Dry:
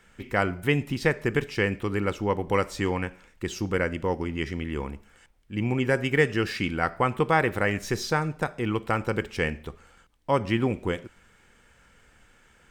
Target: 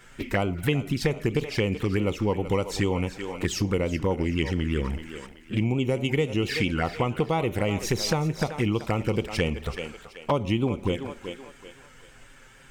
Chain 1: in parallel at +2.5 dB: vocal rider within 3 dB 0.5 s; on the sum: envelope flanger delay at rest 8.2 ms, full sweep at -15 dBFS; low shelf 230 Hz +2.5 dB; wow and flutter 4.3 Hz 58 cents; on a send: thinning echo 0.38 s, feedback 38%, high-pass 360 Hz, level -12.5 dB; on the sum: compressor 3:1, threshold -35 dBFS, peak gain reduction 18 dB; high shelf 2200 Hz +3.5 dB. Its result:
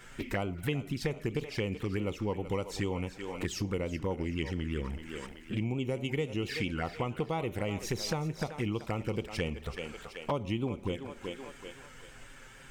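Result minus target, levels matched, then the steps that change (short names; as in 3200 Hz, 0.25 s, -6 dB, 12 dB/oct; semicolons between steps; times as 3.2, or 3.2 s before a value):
compressor: peak gain reduction +8 dB
change: compressor 3:1, threshold -23 dBFS, peak gain reduction 10 dB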